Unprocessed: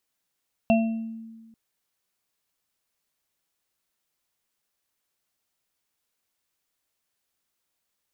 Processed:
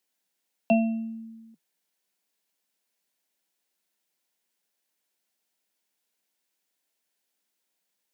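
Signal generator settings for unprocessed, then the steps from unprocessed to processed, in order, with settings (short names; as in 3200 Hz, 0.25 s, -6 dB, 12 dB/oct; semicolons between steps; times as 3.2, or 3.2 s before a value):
sine partials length 0.84 s, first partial 225 Hz, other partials 673/2710 Hz, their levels 0.5/-10 dB, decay 1.51 s, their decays 0.47/0.51 s, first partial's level -17 dB
steep high-pass 160 Hz 96 dB/oct; bell 1200 Hz -9.5 dB 0.23 oct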